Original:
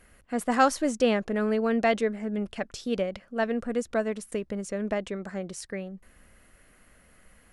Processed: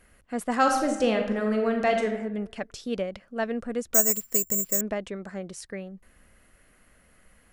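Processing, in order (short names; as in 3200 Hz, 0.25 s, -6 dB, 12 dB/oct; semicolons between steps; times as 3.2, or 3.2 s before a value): 0.56–2.08 reverb throw, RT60 0.9 s, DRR 3 dB; 3.94–4.81 careless resampling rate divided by 6×, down filtered, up zero stuff; gain -1.5 dB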